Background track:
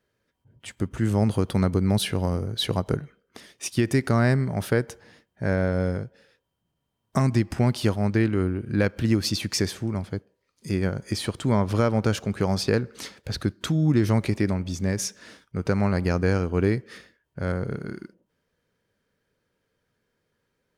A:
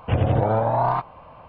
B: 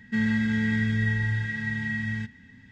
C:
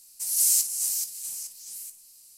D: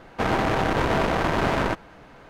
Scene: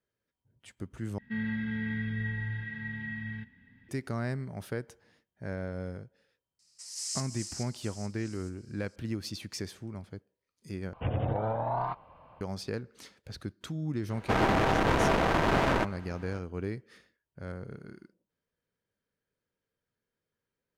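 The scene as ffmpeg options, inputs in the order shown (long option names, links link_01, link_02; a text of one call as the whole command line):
ffmpeg -i bed.wav -i cue0.wav -i cue1.wav -i cue2.wav -i cue3.wav -filter_complex "[0:a]volume=-13dB[link_01];[2:a]lowpass=frequency=3600:width=0.5412,lowpass=frequency=3600:width=1.3066[link_02];[3:a]highpass=frequency=360:width=0.5412,highpass=frequency=360:width=1.3066,equalizer=frequency=470:width_type=q:width=4:gain=4,equalizer=frequency=750:width_type=q:width=4:gain=-3,equalizer=frequency=1300:width_type=q:width=4:gain=9,equalizer=frequency=1900:width_type=q:width=4:gain=7,equalizer=frequency=5100:width_type=q:width=4:gain=8,lowpass=frequency=7500:width=0.5412,lowpass=frequency=7500:width=1.3066[link_03];[link_01]asplit=3[link_04][link_05][link_06];[link_04]atrim=end=1.184[link_07];[link_02]atrim=end=2.71,asetpts=PTS-STARTPTS,volume=-8.5dB[link_08];[link_05]atrim=start=3.886:end=10.934[link_09];[1:a]atrim=end=1.48,asetpts=PTS-STARTPTS,volume=-10.5dB[link_10];[link_06]atrim=start=12.406[link_11];[link_03]atrim=end=2.37,asetpts=PTS-STARTPTS,volume=-11.5dB,afade=type=in:duration=0.004:curve=hsin,afade=type=out:start_time=2.366:duration=0.004:curve=hsin,adelay=6590[link_12];[4:a]atrim=end=2.29,asetpts=PTS-STARTPTS,volume=-3dB,afade=type=in:duration=0.004:curve=hsin,afade=type=out:start_time=2.286:duration=0.004:curve=hsin,adelay=14100[link_13];[link_07][link_08]acrossfade=duration=0.004:curve1=hsin:curve2=hsin[link_14];[link_14][link_09]acrossfade=duration=0.004:curve1=hsin:curve2=hsin[link_15];[link_15][link_10]acrossfade=duration=0.004:curve1=hsin:curve2=hsin[link_16];[link_16][link_11]acrossfade=duration=0.004:curve1=hsin:curve2=hsin[link_17];[link_17][link_12][link_13]amix=inputs=3:normalize=0" out.wav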